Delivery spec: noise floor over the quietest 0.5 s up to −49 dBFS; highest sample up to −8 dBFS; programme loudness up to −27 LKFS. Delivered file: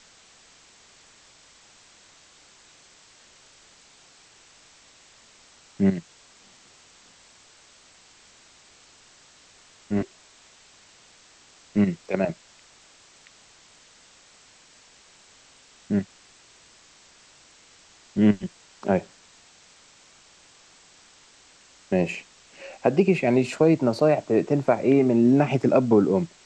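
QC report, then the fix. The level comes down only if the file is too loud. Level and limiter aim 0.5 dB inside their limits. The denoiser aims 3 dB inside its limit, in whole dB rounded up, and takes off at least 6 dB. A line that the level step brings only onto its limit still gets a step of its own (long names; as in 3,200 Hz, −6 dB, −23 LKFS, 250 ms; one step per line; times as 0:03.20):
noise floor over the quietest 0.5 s −54 dBFS: in spec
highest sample −6.0 dBFS: out of spec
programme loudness −23.0 LKFS: out of spec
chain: level −4.5 dB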